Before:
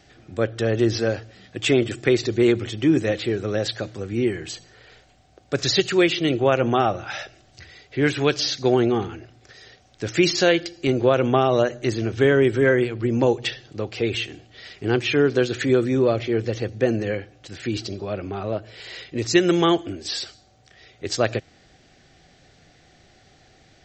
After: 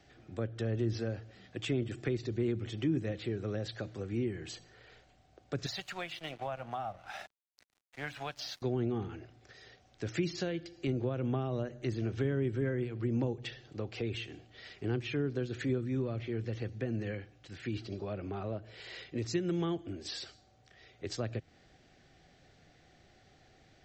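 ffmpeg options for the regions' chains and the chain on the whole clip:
ffmpeg -i in.wav -filter_complex "[0:a]asettb=1/sr,asplit=3[link_01][link_02][link_03];[link_01]atrim=end=5.664[link_04];[link_02]atrim=start=5.66:end=8.62,asetpts=PTS-STARTPTS,afade=type=in:duration=0.004:curve=qsin,afade=type=out:start_time=2.956:duration=0.004:curve=qsin,lowshelf=frequency=520:width_type=q:width=3:gain=-10.5,bandreject=frequency=288.1:width_type=h:width=4,bandreject=frequency=576.2:width_type=h:width=4,bandreject=frequency=864.3:width_type=h:width=4,bandreject=frequency=1152.4:width_type=h:width=4,bandreject=frequency=1440.5:width_type=h:width=4,bandreject=frequency=1728.6:width_type=h:width=4,bandreject=frequency=2016.7:width_type=h:width=4,bandreject=frequency=2304.8:width_type=h:width=4,bandreject=frequency=2592.9:width_type=h:width=4,bandreject=frequency=2881:width_type=h:width=4,bandreject=frequency=3169.1:width_type=h:width=4,aeval=exprs='sgn(val(0))*max(abs(val(0))-0.0119,0)':channel_layout=same[link_05];[link_03]atrim=start=8.616[link_06];[link_04][link_05]acrossfade=duration=0.004:curve1=hsin:curve2=qsin[link_07];[link_07][link_06]acrossfade=duration=0.004:curve1=qsin:curve2=hsin,asettb=1/sr,asplit=3[link_08][link_09][link_10];[link_08]atrim=end=15.784[link_11];[link_09]atrim=start=15.78:end=17.92,asetpts=PTS-STARTPTS,afade=type=in:duration=0.004:curve=qsin,afade=type=out:start_time=2.136:duration=0.004:curve=qsin,acrossover=split=3400[link_12][link_13];[link_13]acompressor=threshold=-46dB:ratio=4:attack=1:release=60[link_14];[link_12][link_14]amix=inputs=2:normalize=0,equalizer=frequency=550:width=0.72:gain=-5[link_15];[link_10]atrim=start=17.916[link_16];[link_11][link_15]acrossfade=duration=0.004:curve1=hsin:curve2=qsin[link_17];[link_17][link_16]acrossfade=duration=0.004:curve1=qsin:curve2=hsin,highshelf=frequency=4400:gain=-6,acrossover=split=250[link_18][link_19];[link_19]acompressor=threshold=-30dB:ratio=6[link_20];[link_18][link_20]amix=inputs=2:normalize=0,volume=-7.5dB" out.wav

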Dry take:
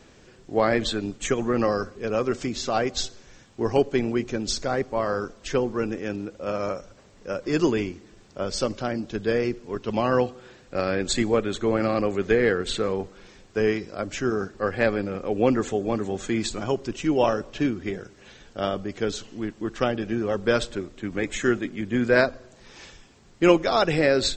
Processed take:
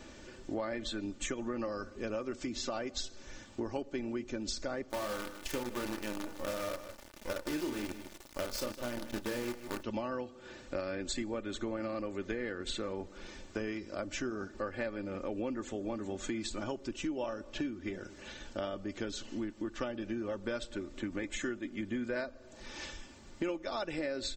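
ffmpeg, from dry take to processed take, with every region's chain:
ffmpeg -i in.wav -filter_complex "[0:a]asettb=1/sr,asplit=3[link_01][link_02][link_03];[link_01]atrim=end=4.904[link_04];[link_02]atrim=start=4.9:end=9.83,asetpts=PTS-STARTPTS,afade=type=in:duration=0.004:curve=qsin,afade=type=out:start_time=4.926:duration=0.004:curve=qsin,asplit=2[link_05][link_06];[link_06]adelay=33,volume=-5dB[link_07];[link_05][link_07]amix=inputs=2:normalize=0,atrim=end_sample=217413,acrusher=bits=5:dc=4:mix=0:aa=0.000001,aecho=1:1:155:0.158,atrim=end_sample=217413[link_08];[link_03]atrim=start=9.826[link_09];[link_04][link_08]acrossfade=duration=0.004:curve1=hsin:curve2=qsin[link_10];[link_10][link_09]acrossfade=duration=0.004:curve1=qsin:curve2=hsin,aecho=1:1:3.4:0.54,acompressor=threshold=-35dB:ratio=6" out.wav

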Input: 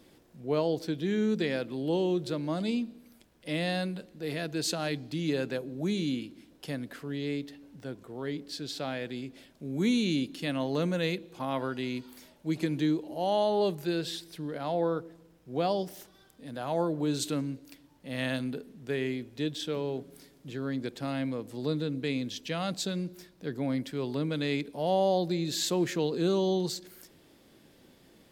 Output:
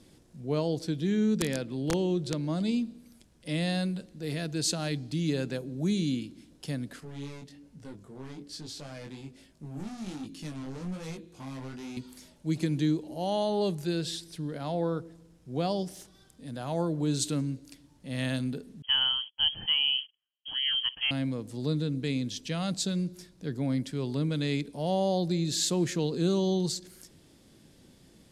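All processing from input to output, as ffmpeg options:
ffmpeg -i in.wav -filter_complex "[0:a]asettb=1/sr,asplit=3[link_01][link_02][link_03];[link_01]atrim=end=1.104[link_04];[link_02]atrim=start=1.1:end=2.74,asetpts=PTS-STARTPTS,afade=type=in:duration=0.004:curve=qsin,afade=type=out:start_time=1.636:duration=0.004:curve=qsin,highshelf=frequency=9700:gain=-7.5,aeval=exprs='(mod(10*val(0)+1,2)-1)/10':channel_layout=same[link_05];[link_03]atrim=start=2.736[link_06];[link_04][link_05]acrossfade=duration=0.004:curve1=hsin:curve2=qsin[link_07];[link_07][link_06]acrossfade=duration=0.004:curve1=qsin:curve2=hsin,asettb=1/sr,asplit=3[link_08][link_09][link_10];[link_08]atrim=end=7.004[link_11];[link_09]atrim=start=7:end=11.97,asetpts=PTS-STARTPTS,afade=type=in:duration=0.004:curve=qsin,afade=type=out:start_time=4.966:duration=0.004:curve=qsin,equalizer=frequency=3700:width_type=o:width=0.42:gain=-3,asoftclip=type=hard:threshold=-35.5dB,flanger=delay=18.5:depth=4.5:speed=1.2[link_12];[link_10]atrim=start=11.966[link_13];[link_11][link_12]acrossfade=duration=0.004:curve1=hsin:curve2=qsin[link_14];[link_14][link_13]acrossfade=duration=0.004:curve1=qsin:curve2=hsin,asettb=1/sr,asplit=3[link_15][link_16][link_17];[link_15]atrim=end=18.824[link_18];[link_16]atrim=start=18.82:end=21.11,asetpts=PTS-STARTPTS,afade=type=in:duration=0.004:curve=qsin,afade=type=out:start_time=2.286:duration=0.004:curve=qsin,agate=range=-37dB:threshold=-48dB:ratio=16:release=100:detection=peak,equalizer=frequency=710:width=0.45:gain=9,lowpass=frequency=2900:width_type=q:width=0.5098,lowpass=frequency=2900:width_type=q:width=0.6013,lowpass=frequency=2900:width_type=q:width=0.9,lowpass=frequency=2900:width_type=q:width=2.563,afreqshift=-3400[link_19];[link_17]atrim=start=21.106[link_20];[link_18][link_19]acrossfade=duration=0.004:curve1=hsin:curve2=qsin[link_21];[link_21][link_20]acrossfade=duration=0.004:curve1=qsin:curve2=hsin,lowpass=frequency=11000:width=0.5412,lowpass=frequency=11000:width=1.3066,bass=frequency=250:gain=9,treble=frequency=4000:gain=8,volume=-3dB" out.wav

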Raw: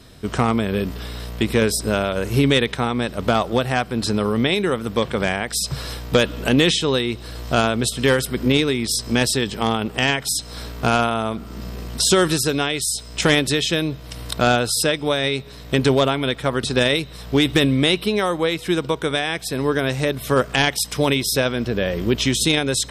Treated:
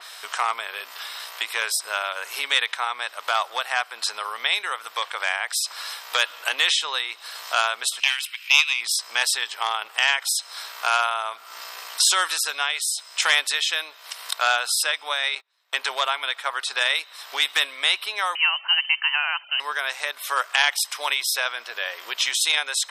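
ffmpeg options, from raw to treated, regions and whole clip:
ffmpeg -i in.wav -filter_complex "[0:a]asettb=1/sr,asplit=3[link_01][link_02][link_03];[link_01]atrim=end=8.004[link_04];[link_02]atrim=start=8:end=8.81,asetpts=PTS-STARTPTS,afade=type=in:duration=0.004:curve=qsin,afade=type=out:start_time=0.806:duration=0.004:curve=qsin,highpass=frequency=2600:width_type=q:width=5.8,aeval=exprs='(tanh(1.26*val(0)+0.75)-tanh(0.75))/1.26':channel_layout=same[link_05];[link_03]atrim=start=8.806[link_06];[link_04][link_05]acrossfade=duration=0.004:curve1=hsin:curve2=qsin[link_07];[link_07][link_06]acrossfade=duration=0.004:curve1=qsin:curve2=hsin,asettb=1/sr,asplit=3[link_08][link_09][link_10];[link_08]atrim=end=15.354[link_11];[link_09]atrim=start=15.35:end=15.91,asetpts=PTS-STARTPTS,afade=type=in:duration=0.004:curve=qsin,afade=type=out:start_time=0.556:duration=0.004:curve=qsin,bass=frequency=250:gain=-2,treble=frequency=4000:gain=-3,agate=range=-29dB:threshold=-30dB:ratio=16:release=100:detection=peak[link_12];[link_10]atrim=start=15.906[link_13];[link_11][link_12]acrossfade=duration=0.004:curve1=hsin:curve2=qsin[link_14];[link_14][link_13]acrossfade=duration=0.004:curve1=qsin:curve2=hsin,asettb=1/sr,asplit=3[link_15][link_16][link_17];[link_15]atrim=end=18.354[link_18];[link_16]atrim=start=18.35:end=19.6,asetpts=PTS-STARTPTS,afade=type=in:duration=0.004:curve=qsin,afade=type=out:start_time=1.246:duration=0.004:curve=qsin,highpass=frequency=130:width=0.5412,highpass=frequency=130:width=1.3066,lowpass=frequency=2700:width_type=q:width=0.5098,lowpass=frequency=2700:width_type=q:width=0.6013,lowpass=frequency=2700:width_type=q:width=0.9,lowpass=frequency=2700:width_type=q:width=2.563,afreqshift=-3200[link_19];[link_17]atrim=start=19.596[link_20];[link_18][link_19]acrossfade=duration=0.004:curve1=hsin:curve2=qsin[link_21];[link_21][link_20]acrossfade=duration=0.004:curve1=qsin:curve2=hsin,highpass=frequency=880:width=0.5412,highpass=frequency=880:width=1.3066,acompressor=mode=upward:threshold=-30dB:ratio=2.5,adynamicequalizer=threshold=0.0224:dfrequency=3100:dqfactor=0.7:tfrequency=3100:tqfactor=0.7:attack=5:release=100:ratio=0.375:range=2:mode=cutabove:tftype=highshelf,volume=1dB" out.wav

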